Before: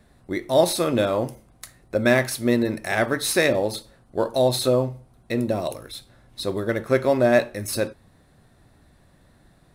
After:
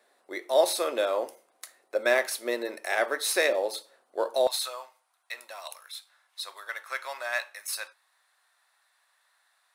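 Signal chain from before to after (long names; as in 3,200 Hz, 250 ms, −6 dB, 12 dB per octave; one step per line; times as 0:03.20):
high-pass filter 430 Hz 24 dB per octave, from 0:04.47 960 Hz
level −3.5 dB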